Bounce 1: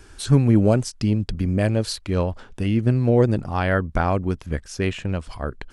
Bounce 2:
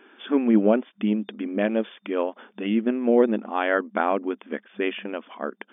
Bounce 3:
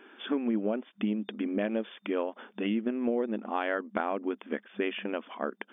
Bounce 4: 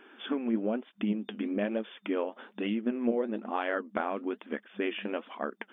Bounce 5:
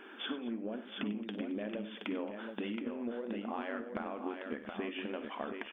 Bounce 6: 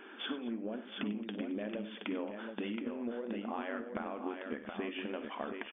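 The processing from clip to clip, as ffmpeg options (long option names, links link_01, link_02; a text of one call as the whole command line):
ffmpeg -i in.wav -af "afftfilt=real='re*between(b*sr/4096,200,3600)':imag='im*between(b*sr/4096,200,3600)':win_size=4096:overlap=0.75" out.wav
ffmpeg -i in.wav -af "acompressor=threshold=-25dB:ratio=6,volume=-1dB" out.wav
ffmpeg -i in.wav -af "flanger=delay=0.6:depth=10:regen=64:speed=1.1:shape=triangular,volume=3.5dB" out.wav
ffmpeg -i in.wav -filter_complex "[0:a]acompressor=threshold=-39dB:ratio=10,asplit=2[link_01][link_02];[link_02]aecho=0:1:47|57|96|221|683|723:0.15|0.2|0.2|0.112|0.141|0.531[link_03];[link_01][link_03]amix=inputs=2:normalize=0,volume=3dB" out.wav
ffmpeg -i in.wav -af "aresample=8000,aresample=44100" out.wav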